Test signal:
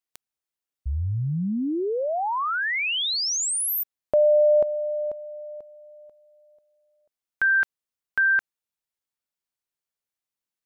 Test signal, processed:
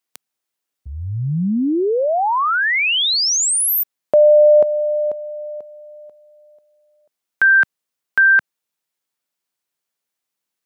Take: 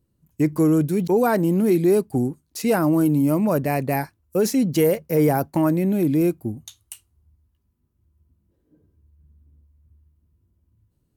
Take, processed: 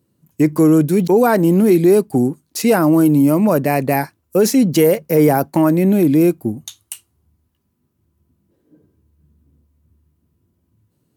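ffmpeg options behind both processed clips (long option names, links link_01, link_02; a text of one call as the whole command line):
ffmpeg -i in.wav -filter_complex "[0:a]highpass=140,asplit=2[link_01][link_02];[link_02]alimiter=limit=-15.5dB:level=0:latency=1:release=200,volume=-0.5dB[link_03];[link_01][link_03]amix=inputs=2:normalize=0,volume=2.5dB" out.wav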